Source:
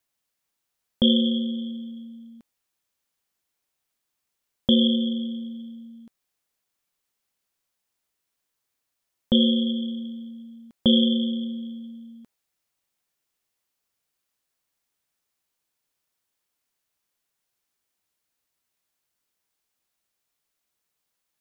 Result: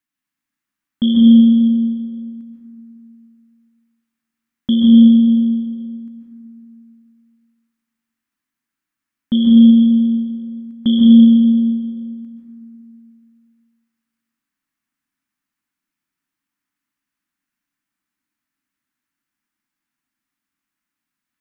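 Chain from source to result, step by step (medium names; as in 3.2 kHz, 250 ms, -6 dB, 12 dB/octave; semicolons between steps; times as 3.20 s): FFT filter 110 Hz 0 dB, 280 Hz +14 dB, 440 Hz -12 dB, 1.2 kHz +4 dB, 1.8 kHz +7 dB, 3.9 kHz -1 dB; reverberation RT60 2.4 s, pre-delay 122 ms, DRR -2.5 dB; trim -6.5 dB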